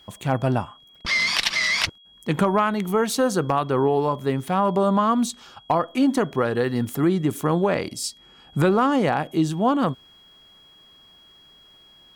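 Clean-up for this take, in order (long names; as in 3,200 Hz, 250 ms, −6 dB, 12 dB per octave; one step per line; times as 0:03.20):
clipped peaks rebuilt −10 dBFS
notch filter 3,300 Hz, Q 30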